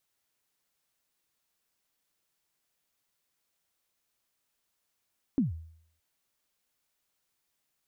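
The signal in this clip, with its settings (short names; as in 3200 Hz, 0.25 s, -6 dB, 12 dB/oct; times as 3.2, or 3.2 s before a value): kick drum length 0.62 s, from 300 Hz, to 81 Hz, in 0.142 s, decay 0.63 s, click off, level -20 dB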